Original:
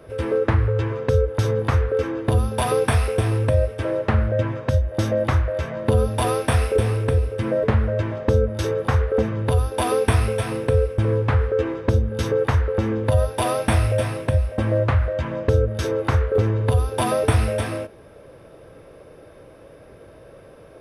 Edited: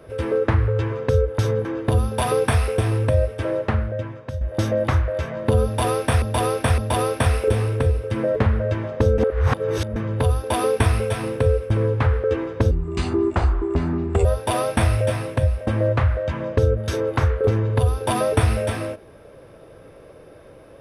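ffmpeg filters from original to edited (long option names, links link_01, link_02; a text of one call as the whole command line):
ffmpeg -i in.wav -filter_complex "[0:a]asplit=9[link_01][link_02][link_03][link_04][link_05][link_06][link_07][link_08][link_09];[link_01]atrim=end=1.652[link_10];[link_02]atrim=start=2.048:end=4.81,asetpts=PTS-STARTPTS,afade=type=out:start_time=1.932:duration=0.83:curve=qua:silence=0.316228[link_11];[link_03]atrim=start=4.81:end=6.622,asetpts=PTS-STARTPTS,afade=type=in:duration=0.004:curve=hsin:silence=0.316228[link_12];[link_04]atrim=start=6.058:end=6.622[link_13];[link_05]atrim=start=6.058:end=8.462[link_14];[link_06]atrim=start=8.458:end=9.242,asetpts=PTS-STARTPTS,areverse[link_15];[link_07]atrim=start=9.238:end=11.994[link_16];[link_08]atrim=start=11.99:end=13.16,asetpts=PTS-STARTPTS,asetrate=33516,aresample=44100[link_17];[link_09]atrim=start=13.156[link_18];[link_11][link_12]concat=n=2:v=0:a=1[link_19];[link_10][link_19]acrossfade=duration=0.004:curve1=hsin:curve2=hsin[link_20];[link_20][link_13]acrossfade=duration=0.004:curve1=hsin:curve2=hsin[link_21];[link_21][link_14]acrossfade=duration=0.004:curve1=hsin:curve2=hsin[link_22];[link_22][link_15]acrossfade=duration=0.004:curve1=hsin:curve2=hsin[link_23];[link_23][link_16]acrossfade=duration=0.004:curve1=hsin:curve2=hsin[link_24];[link_24][link_17]acrossfade=duration=0.004:curve1=hsin:curve2=hsin[link_25];[link_25][link_18]acrossfade=duration=0.004:curve1=hsin:curve2=hsin" out.wav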